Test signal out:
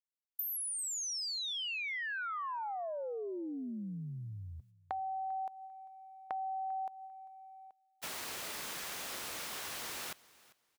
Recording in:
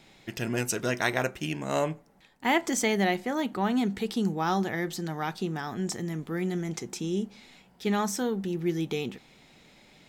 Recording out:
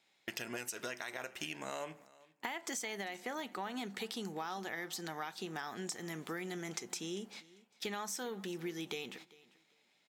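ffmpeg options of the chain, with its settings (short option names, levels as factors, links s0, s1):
-filter_complex "[0:a]agate=range=0.0891:threshold=0.00501:ratio=16:detection=peak,highpass=f=910:p=1,alimiter=limit=0.075:level=0:latency=1:release=160,acompressor=threshold=0.00562:ratio=6,asplit=2[s0][s1];[s1]aecho=0:1:396|792:0.0841|0.0168[s2];[s0][s2]amix=inputs=2:normalize=0,volume=2.11"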